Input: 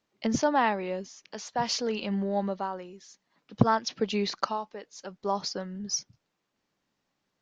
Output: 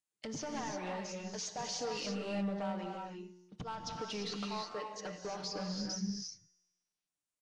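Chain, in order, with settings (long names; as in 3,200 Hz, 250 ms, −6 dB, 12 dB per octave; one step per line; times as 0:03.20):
noise gate −45 dBFS, range −25 dB
high-shelf EQ 4,400 Hz +5.5 dB
comb filter 6.6 ms, depth 49%
downward compressor 12 to 1, threshold −32 dBFS, peak gain reduction 18.5 dB
brickwall limiter −27.5 dBFS, peak gain reduction 11 dB
gain into a clipping stage and back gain 34 dB
tuned comb filter 180 Hz, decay 1.2 s, mix 60%
reverb whose tail is shaped and stops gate 370 ms rising, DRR 1.5 dB
level +5.5 dB
Nellymoser 44 kbit/s 22,050 Hz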